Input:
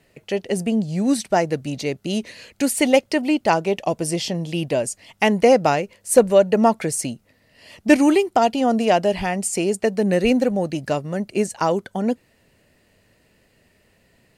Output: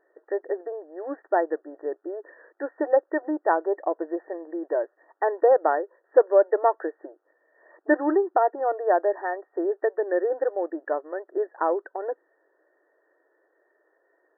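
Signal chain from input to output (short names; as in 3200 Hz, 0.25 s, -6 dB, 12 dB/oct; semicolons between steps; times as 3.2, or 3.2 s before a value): brick-wall FIR band-pass 300–1900 Hz; gain -3.5 dB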